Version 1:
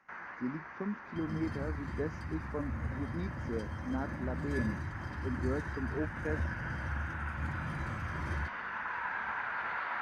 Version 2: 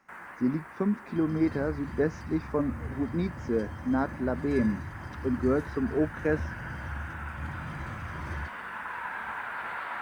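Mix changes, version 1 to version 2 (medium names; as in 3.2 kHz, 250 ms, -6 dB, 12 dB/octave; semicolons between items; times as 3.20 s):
speech +10.0 dB; first sound: remove rippled Chebyshev low-pass 6.3 kHz, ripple 3 dB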